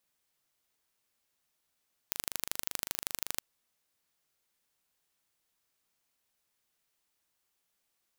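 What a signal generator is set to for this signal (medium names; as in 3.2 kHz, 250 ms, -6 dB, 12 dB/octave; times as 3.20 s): pulse train 25.3 per s, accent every 2, -4 dBFS 1.30 s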